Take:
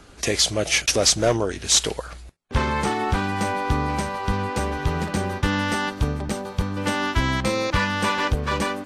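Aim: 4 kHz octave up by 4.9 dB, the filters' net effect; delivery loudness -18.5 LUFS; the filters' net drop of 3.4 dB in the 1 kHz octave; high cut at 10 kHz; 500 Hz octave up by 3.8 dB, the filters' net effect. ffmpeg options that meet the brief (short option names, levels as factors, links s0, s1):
-af "lowpass=10000,equalizer=f=500:t=o:g=6,equalizer=f=1000:t=o:g=-6.5,equalizer=f=4000:t=o:g=6.5,volume=1.26"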